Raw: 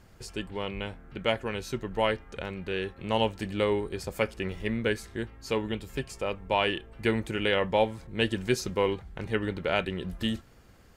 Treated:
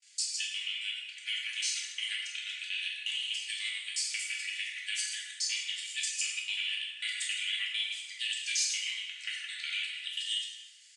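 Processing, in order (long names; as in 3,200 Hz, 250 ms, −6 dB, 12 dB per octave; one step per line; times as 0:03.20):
reversed piece by piece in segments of 90 ms
noise gate with hold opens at −47 dBFS
Butterworth high-pass 2,300 Hz 36 dB per octave
comb filter 3.5 ms, depth 63%
brickwall limiter −26 dBFS, peak gain reduction 11 dB
harmonic and percussive parts rebalanced percussive +5 dB
downward compressor, threshold −33 dBFS, peak gain reduction 5.5 dB
low-pass with resonance 7,800 Hz, resonance Q 2.3
dense smooth reverb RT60 1.3 s, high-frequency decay 0.65×, DRR −5 dB
MP3 80 kbit/s 24,000 Hz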